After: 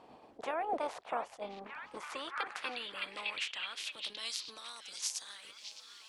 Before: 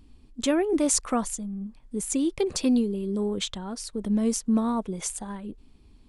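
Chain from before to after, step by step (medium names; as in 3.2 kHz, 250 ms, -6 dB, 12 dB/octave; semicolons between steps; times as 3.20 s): spectral peaks clipped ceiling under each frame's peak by 27 dB; word length cut 10-bit, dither none; compression 2.5:1, threshold -35 dBFS, peak gain reduction 11.5 dB; on a send: repeats whose band climbs or falls 614 ms, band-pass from 3.1 kHz, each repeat -0.7 oct, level -3 dB; on the sum: band-pass sweep 700 Hz -> 5.7 kHz, 1.32–4.81 s; band-stop 380 Hz, Q 12; attacks held to a fixed rise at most 420 dB/s; trim +6 dB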